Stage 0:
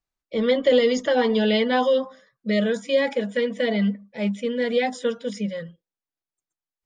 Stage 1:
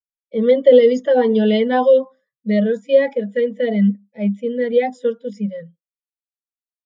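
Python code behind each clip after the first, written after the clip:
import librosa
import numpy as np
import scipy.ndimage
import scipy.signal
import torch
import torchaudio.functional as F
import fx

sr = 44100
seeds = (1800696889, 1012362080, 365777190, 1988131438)

y = fx.spectral_expand(x, sr, expansion=1.5)
y = y * librosa.db_to_amplitude(7.0)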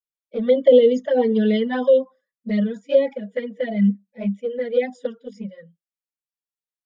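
y = fx.env_flanger(x, sr, rest_ms=6.5, full_db=-9.5)
y = y * librosa.db_to_amplitude(-1.5)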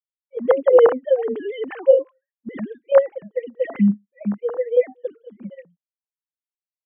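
y = fx.sine_speech(x, sr)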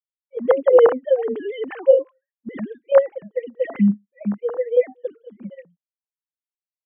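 y = x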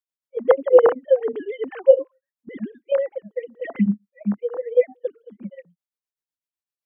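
y = x * np.abs(np.cos(np.pi * 7.9 * np.arange(len(x)) / sr))
y = y * librosa.db_to_amplitude(1.5)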